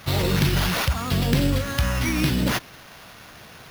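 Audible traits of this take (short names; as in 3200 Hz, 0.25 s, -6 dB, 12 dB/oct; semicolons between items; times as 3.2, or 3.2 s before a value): phasing stages 2, 0.93 Hz, lowest notch 440–1100 Hz; aliases and images of a low sample rate 8000 Hz, jitter 0%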